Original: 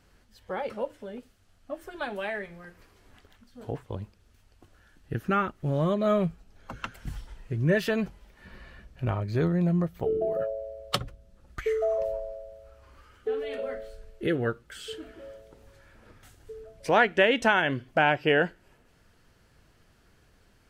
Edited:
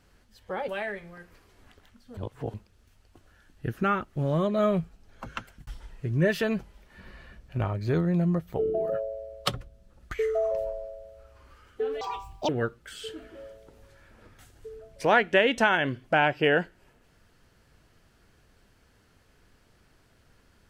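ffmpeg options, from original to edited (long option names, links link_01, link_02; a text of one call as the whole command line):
ffmpeg -i in.wav -filter_complex "[0:a]asplit=7[link_01][link_02][link_03][link_04][link_05][link_06][link_07];[link_01]atrim=end=0.682[link_08];[link_02]atrim=start=2.148:end=3.642[link_09];[link_03]atrim=start=3.638:end=4.012,asetpts=PTS-STARTPTS,areverse[link_10];[link_04]atrim=start=4.008:end=7.14,asetpts=PTS-STARTPTS,afade=type=out:start_time=2.852:duration=0.28[link_11];[link_05]atrim=start=7.14:end=13.484,asetpts=PTS-STARTPTS,afade=type=in:duration=0.004:curve=hsin[link_12];[link_06]atrim=start=13.48:end=14.33,asetpts=PTS-STARTPTS,asetrate=78498,aresample=44100[link_13];[link_07]atrim=start=14.326[link_14];[link_08][link_09]acrossfade=duration=0.004:curve1=hsin:curve2=hsin[link_15];[link_15][link_10]acrossfade=duration=0.004:curve1=hsin:curve2=hsin[link_16];[link_11][link_12]concat=n=2:v=0:a=1[link_17];[link_16][link_17]acrossfade=duration=0.004:curve1=hsin:curve2=hsin[link_18];[link_18][link_13]acrossfade=duration=0.004:curve1=hsin:curve2=hsin[link_19];[link_19][link_14]acrossfade=duration=0.004:curve1=hsin:curve2=hsin" out.wav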